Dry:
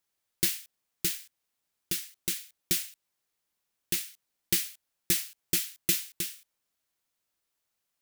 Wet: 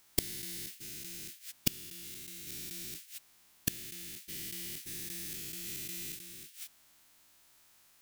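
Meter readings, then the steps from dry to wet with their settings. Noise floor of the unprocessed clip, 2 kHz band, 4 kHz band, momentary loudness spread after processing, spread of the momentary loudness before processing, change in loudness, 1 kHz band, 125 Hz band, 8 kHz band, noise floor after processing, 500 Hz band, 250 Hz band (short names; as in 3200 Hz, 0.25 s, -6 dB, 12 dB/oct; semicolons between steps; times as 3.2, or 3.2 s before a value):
-83 dBFS, -7.5 dB, -7.5 dB, 11 LU, 11 LU, -9.5 dB, -4.0 dB, -3.0 dB, -7.5 dB, -64 dBFS, -5.0 dB, -4.5 dB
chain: spectral dilation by 0.48 s; bell 490 Hz -9 dB 0.33 oct; flipped gate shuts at -22 dBFS, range -34 dB; gain +12 dB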